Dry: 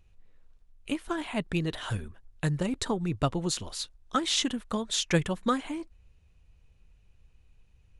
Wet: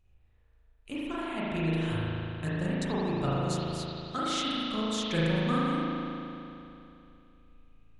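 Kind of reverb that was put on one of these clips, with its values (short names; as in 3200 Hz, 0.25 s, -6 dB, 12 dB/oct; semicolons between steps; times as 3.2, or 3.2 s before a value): spring tank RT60 2.9 s, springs 37 ms, chirp 55 ms, DRR -8.5 dB; gain -9 dB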